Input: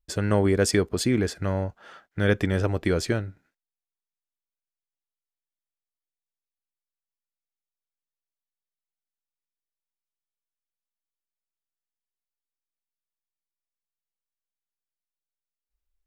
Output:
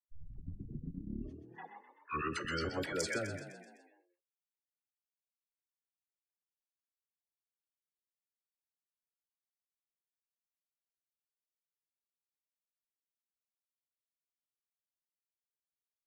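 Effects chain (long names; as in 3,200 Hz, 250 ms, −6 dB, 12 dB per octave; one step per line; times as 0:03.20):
turntable start at the beginning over 2.89 s
noise gate −45 dBFS, range −36 dB
spectral tilt +4 dB per octave
gate on every frequency bin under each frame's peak −15 dB strong
volume swells 310 ms
brickwall limiter −28 dBFS, peak gain reduction 5.5 dB
downward compressor 2 to 1, threshold −46 dBFS, peak gain reduction 6.5 dB
tuned comb filter 280 Hz, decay 0.18 s, harmonics all, mix 60%
all-pass dispersion lows, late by 67 ms, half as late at 750 Hz
echo with shifted repeats 127 ms, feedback 54%, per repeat +42 Hz, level −9 dB
level +16 dB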